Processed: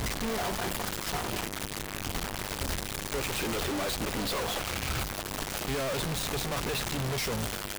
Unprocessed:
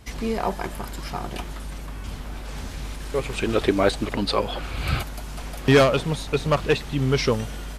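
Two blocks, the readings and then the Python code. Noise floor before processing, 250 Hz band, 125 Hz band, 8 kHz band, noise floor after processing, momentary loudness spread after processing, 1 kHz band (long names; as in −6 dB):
−35 dBFS, −9.5 dB, −9.0 dB, +4.5 dB, −38 dBFS, 4 LU, −6.0 dB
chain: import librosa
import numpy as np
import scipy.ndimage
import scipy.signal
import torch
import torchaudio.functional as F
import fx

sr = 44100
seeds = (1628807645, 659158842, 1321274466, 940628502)

y = np.sign(x) * np.sqrt(np.mean(np.square(x)))
y = fx.hum_notches(y, sr, base_hz=50, count=5)
y = F.gain(torch.from_numpy(y), -6.0).numpy()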